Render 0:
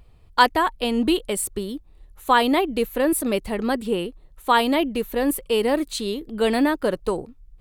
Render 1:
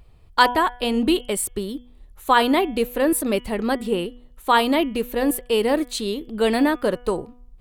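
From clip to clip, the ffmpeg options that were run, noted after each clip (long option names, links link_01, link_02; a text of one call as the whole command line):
ffmpeg -i in.wav -af "bandreject=frequency=244.7:width_type=h:width=4,bandreject=frequency=489.4:width_type=h:width=4,bandreject=frequency=734.1:width_type=h:width=4,bandreject=frequency=978.8:width_type=h:width=4,bandreject=frequency=1223.5:width_type=h:width=4,bandreject=frequency=1468.2:width_type=h:width=4,bandreject=frequency=1712.9:width_type=h:width=4,bandreject=frequency=1957.6:width_type=h:width=4,bandreject=frequency=2202.3:width_type=h:width=4,bandreject=frequency=2447:width_type=h:width=4,bandreject=frequency=2691.7:width_type=h:width=4,bandreject=frequency=2936.4:width_type=h:width=4,bandreject=frequency=3181.1:width_type=h:width=4,bandreject=frequency=3425.8:width_type=h:width=4,volume=1dB" out.wav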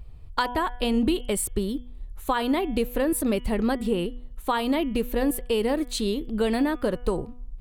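ffmpeg -i in.wav -af "acompressor=threshold=-20dB:ratio=6,lowshelf=frequency=160:gain=11.5,volume=-2dB" out.wav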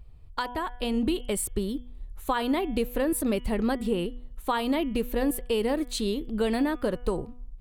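ffmpeg -i in.wav -af "dynaudnorm=framelen=620:gausssize=3:maxgain=4dB,volume=-6dB" out.wav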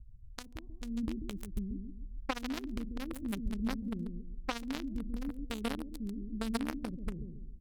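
ffmpeg -i in.wav -filter_complex "[0:a]aecho=1:1:138|276|414|552:0.562|0.18|0.0576|0.0184,acrossover=split=240[link_01][link_02];[link_02]acrusher=bits=2:mix=0:aa=0.5[link_03];[link_01][link_03]amix=inputs=2:normalize=0,volume=-4.5dB" out.wav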